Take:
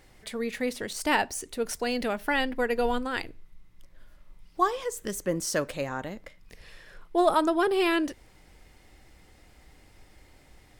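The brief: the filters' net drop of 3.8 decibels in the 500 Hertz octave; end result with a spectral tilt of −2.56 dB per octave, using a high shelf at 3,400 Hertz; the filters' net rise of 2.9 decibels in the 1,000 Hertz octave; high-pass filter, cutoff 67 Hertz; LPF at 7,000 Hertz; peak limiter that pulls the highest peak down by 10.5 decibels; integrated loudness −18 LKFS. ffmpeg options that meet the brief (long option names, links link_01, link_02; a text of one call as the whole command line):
ffmpeg -i in.wav -af "highpass=67,lowpass=7000,equalizer=frequency=500:width_type=o:gain=-7,equalizer=frequency=1000:width_type=o:gain=5,highshelf=frequency=3400:gain=7.5,volume=12dB,alimiter=limit=-5.5dB:level=0:latency=1" out.wav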